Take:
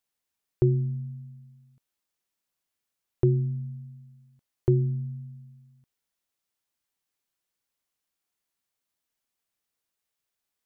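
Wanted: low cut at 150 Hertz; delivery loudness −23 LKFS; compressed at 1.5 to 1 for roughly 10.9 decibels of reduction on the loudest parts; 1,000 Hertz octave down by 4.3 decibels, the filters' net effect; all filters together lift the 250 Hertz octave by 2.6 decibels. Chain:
high-pass filter 150 Hz
parametric band 250 Hz +8.5 dB
parametric band 1,000 Hz −7 dB
downward compressor 1.5 to 1, threshold −47 dBFS
level +16 dB

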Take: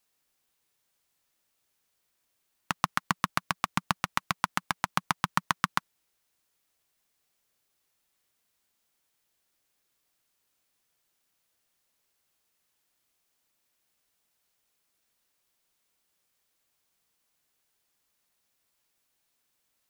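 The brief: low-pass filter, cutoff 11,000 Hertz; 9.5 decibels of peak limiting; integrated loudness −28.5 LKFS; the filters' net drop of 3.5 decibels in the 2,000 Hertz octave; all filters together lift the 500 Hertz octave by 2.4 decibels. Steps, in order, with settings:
low-pass filter 11,000 Hz
parametric band 500 Hz +4 dB
parametric band 2,000 Hz −5 dB
level +11.5 dB
brickwall limiter −2 dBFS

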